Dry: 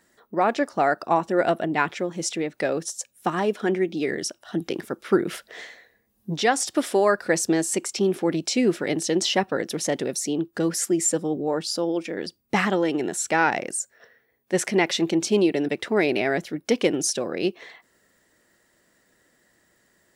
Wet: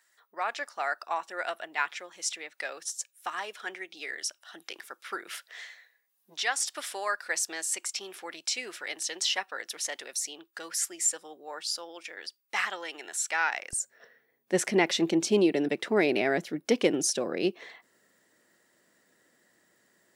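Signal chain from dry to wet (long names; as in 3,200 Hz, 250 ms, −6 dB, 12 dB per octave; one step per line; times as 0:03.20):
high-pass filter 1,200 Hz 12 dB per octave, from 0:13.73 150 Hz
level −3 dB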